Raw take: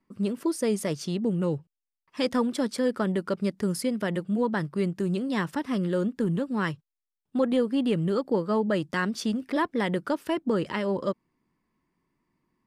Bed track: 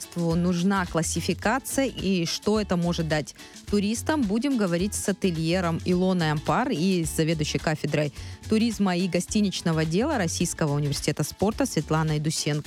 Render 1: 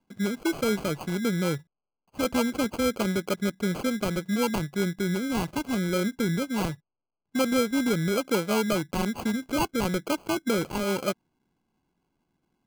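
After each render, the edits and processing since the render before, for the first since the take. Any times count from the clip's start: sample-and-hold 24×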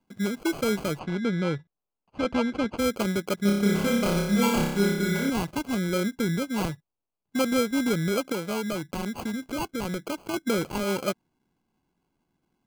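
0.99–2.78 s: low-pass 3.6 kHz; 3.42–5.30 s: flutter echo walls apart 5.1 m, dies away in 0.84 s; 8.32–10.34 s: compression 2.5:1, threshold -28 dBFS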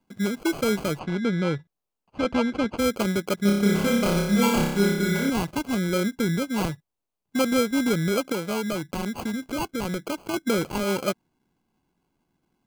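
trim +2 dB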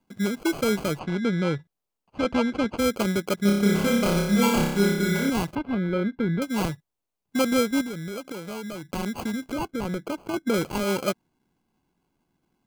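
5.55–6.42 s: distance through air 420 m; 7.81–8.93 s: compression 3:1, threshold -34 dBFS; 9.53–10.54 s: treble shelf 2.4 kHz -7.5 dB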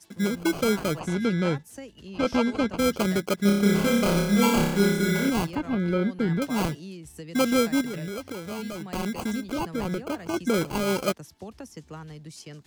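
add bed track -17 dB

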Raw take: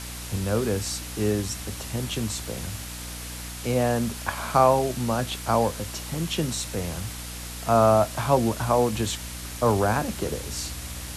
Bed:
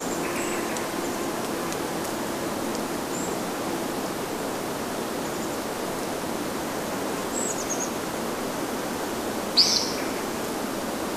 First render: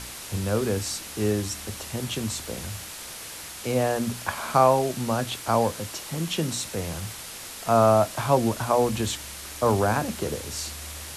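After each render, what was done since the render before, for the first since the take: de-hum 60 Hz, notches 5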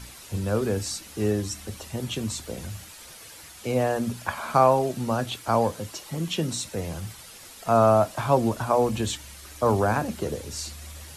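noise reduction 9 dB, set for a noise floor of -39 dBFS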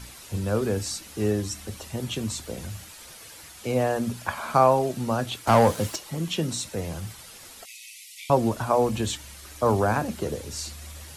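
5.47–5.96 s: waveshaping leveller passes 2; 7.65–8.30 s: brick-wall FIR high-pass 1.9 kHz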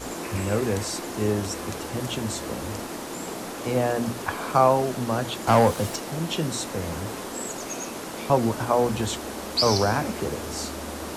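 add bed -5.5 dB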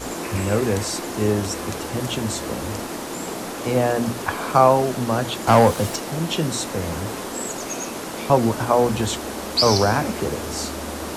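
trim +4 dB

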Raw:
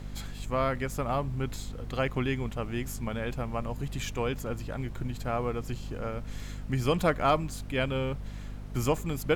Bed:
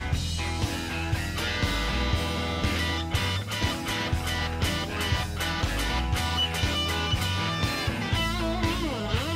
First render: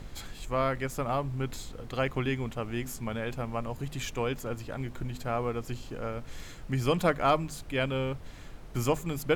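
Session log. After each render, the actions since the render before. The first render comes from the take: hum notches 50/100/150/200/250 Hz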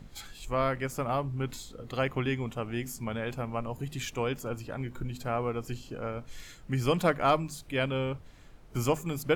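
noise print and reduce 8 dB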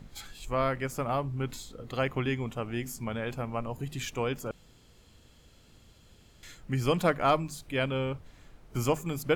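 4.51–6.43 s: room tone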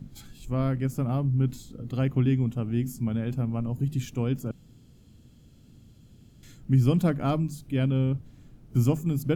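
ten-band graphic EQ 125 Hz +9 dB, 250 Hz +8 dB, 500 Hz -4 dB, 1 kHz -7 dB, 2 kHz -7 dB, 4 kHz -4 dB, 8 kHz -3 dB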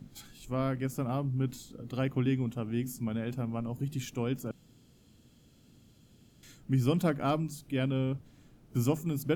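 bass shelf 200 Hz -11 dB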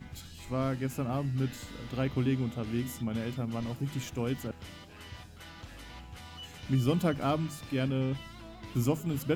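add bed -20 dB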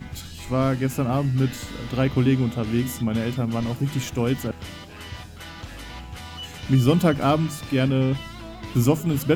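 trim +9.5 dB

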